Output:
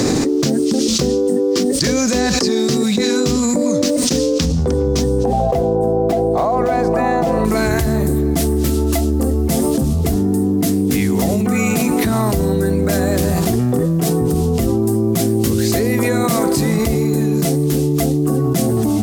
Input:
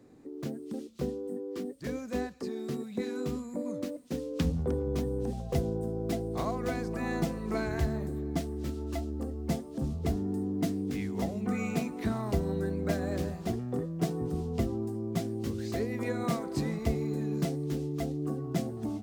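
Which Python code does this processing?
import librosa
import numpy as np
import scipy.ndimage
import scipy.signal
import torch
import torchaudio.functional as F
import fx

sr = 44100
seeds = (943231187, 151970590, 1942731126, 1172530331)

y = fx.peak_eq(x, sr, hz=fx.steps((0.0, 5600.0), (5.24, 710.0), (7.45, 12000.0)), db=14.5, octaves=1.4)
y = fx.env_flatten(y, sr, amount_pct=100)
y = F.gain(torch.from_numpy(y), 3.0).numpy()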